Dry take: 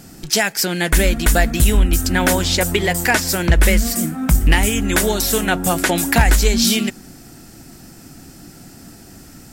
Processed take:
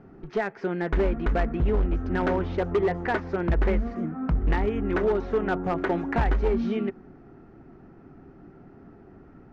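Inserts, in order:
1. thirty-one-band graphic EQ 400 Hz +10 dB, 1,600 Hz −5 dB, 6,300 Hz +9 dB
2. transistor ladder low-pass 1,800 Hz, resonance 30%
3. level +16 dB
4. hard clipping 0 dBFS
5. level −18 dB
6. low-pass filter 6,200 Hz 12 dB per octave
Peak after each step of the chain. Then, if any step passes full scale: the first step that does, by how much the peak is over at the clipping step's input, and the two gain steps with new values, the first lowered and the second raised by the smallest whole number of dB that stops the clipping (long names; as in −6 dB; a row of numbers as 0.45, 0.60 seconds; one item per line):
+1.0, −7.5, +8.5, 0.0, −18.0, −17.5 dBFS
step 1, 8.5 dB
step 3 +7 dB, step 5 −9 dB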